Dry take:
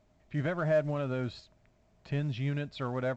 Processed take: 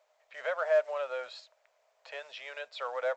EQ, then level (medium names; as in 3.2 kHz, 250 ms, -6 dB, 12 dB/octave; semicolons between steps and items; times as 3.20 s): elliptic high-pass 500 Hz, stop band 40 dB; +2.5 dB